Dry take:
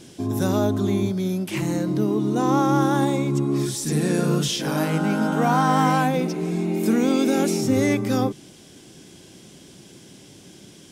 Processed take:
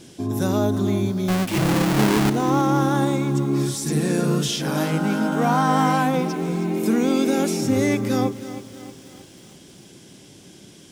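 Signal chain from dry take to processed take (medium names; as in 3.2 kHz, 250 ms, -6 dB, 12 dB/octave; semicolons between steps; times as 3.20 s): 1.28–2.30 s: square wave that keeps the level; bit-crushed delay 317 ms, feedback 55%, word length 7-bit, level -13.5 dB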